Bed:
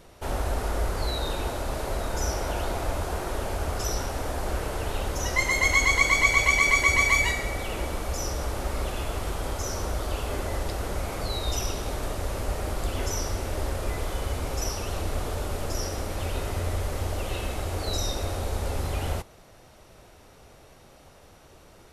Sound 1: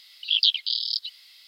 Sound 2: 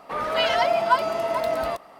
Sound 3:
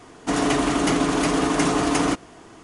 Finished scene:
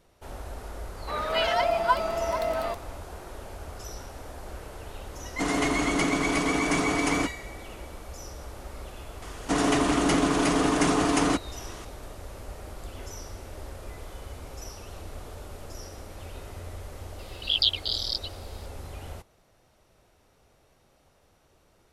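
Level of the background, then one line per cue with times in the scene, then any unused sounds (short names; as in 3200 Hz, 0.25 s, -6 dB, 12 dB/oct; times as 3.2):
bed -11 dB
0.98 add 2 -3.5 dB
5.12 add 3 -5.5 dB
9.22 add 3 -2.5 dB + mismatched tape noise reduction encoder only
17.19 add 1 -3 dB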